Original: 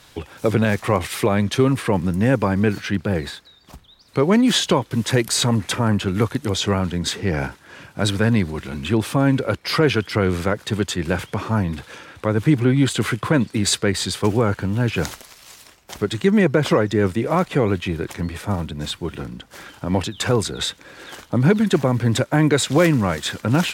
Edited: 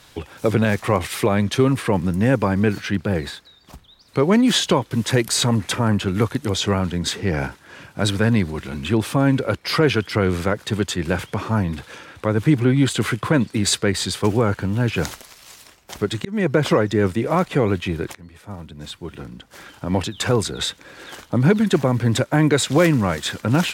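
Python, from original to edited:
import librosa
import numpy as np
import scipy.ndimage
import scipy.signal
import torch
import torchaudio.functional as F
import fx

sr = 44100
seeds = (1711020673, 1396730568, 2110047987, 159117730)

y = fx.edit(x, sr, fx.fade_in_span(start_s=16.25, length_s=0.28),
    fx.fade_in_from(start_s=18.15, length_s=1.91, floor_db=-20.5), tone=tone)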